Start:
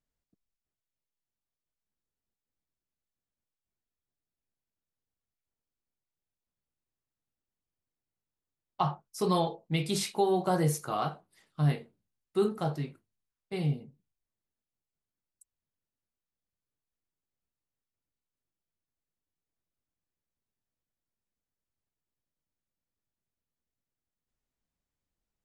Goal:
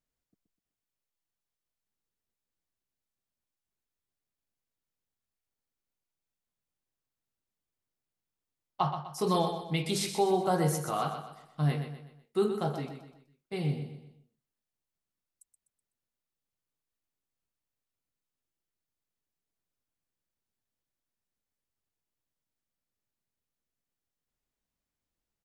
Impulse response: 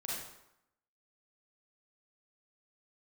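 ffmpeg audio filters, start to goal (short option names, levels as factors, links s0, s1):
-af "lowshelf=f=170:g=-3,aecho=1:1:125|250|375|500:0.376|0.15|0.0601|0.0241"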